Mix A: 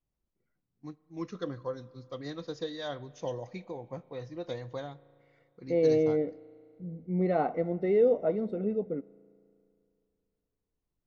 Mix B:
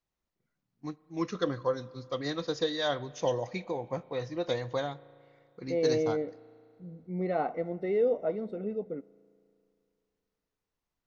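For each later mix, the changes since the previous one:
first voice +9.0 dB; master: add low shelf 450 Hz -6 dB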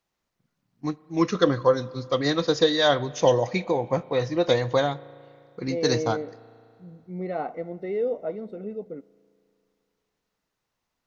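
first voice +10.0 dB

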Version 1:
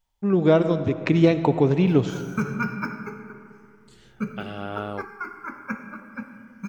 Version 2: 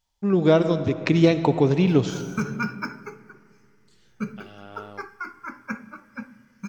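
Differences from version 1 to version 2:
second voice -11.0 dB; background: send -11.5 dB; master: add bell 5200 Hz +7.5 dB 1.1 oct

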